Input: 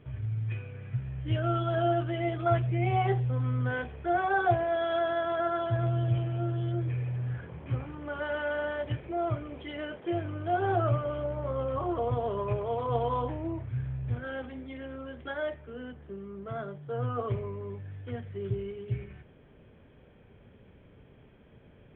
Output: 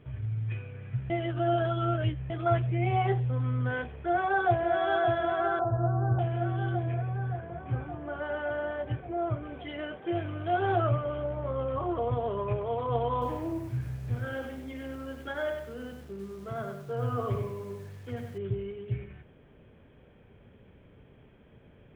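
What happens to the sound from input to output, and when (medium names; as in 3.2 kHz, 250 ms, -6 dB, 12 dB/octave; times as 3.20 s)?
1.10–2.30 s: reverse
4.05–4.73 s: echo throw 570 ms, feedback 75%, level -4.5 dB
5.59–6.19 s: steep low-pass 1.4 kHz 48 dB/octave
6.94–9.43 s: treble shelf 2.1 kHz -8.5 dB
10.15–10.87 s: treble shelf 2.6 kHz +8.5 dB
13.12–18.38 s: bit-crushed delay 97 ms, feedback 35%, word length 9-bit, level -5.5 dB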